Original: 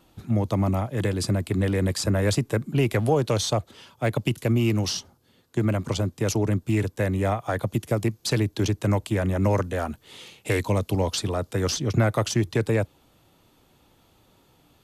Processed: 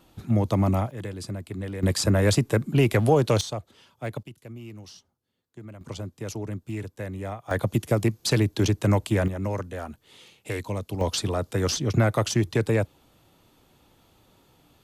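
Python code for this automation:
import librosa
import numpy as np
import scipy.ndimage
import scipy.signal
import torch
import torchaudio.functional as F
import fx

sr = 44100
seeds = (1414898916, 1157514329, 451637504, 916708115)

y = fx.gain(x, sr, db=fx.steps((0.0, 1.0), (0.91, -9.5), (1.83, 2.0), (3.41, -8.0), (4.23, -19.0), (5.81, -9.5), (7.51, 1.5), (9.28, -7.0), (11.01, 0.0)))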